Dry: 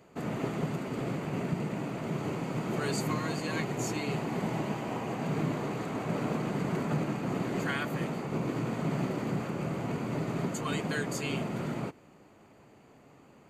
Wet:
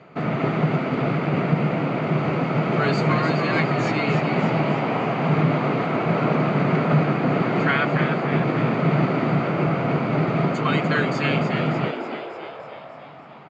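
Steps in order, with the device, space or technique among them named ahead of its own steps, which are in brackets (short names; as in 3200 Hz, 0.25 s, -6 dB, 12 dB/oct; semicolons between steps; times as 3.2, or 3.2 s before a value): frequency-shifting delay pedal into a guitar cabinet (frequency-shifting echo 0.296 s, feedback 60%, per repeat +100 Hz, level -7.5 dB; speaker cabinet 97–4500 Hz, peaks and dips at 150 Hz +7 dB, 670 Hz +5 dB, 1300 Hz +7 dB, 2200 Hz +6 dB); gain +8 dB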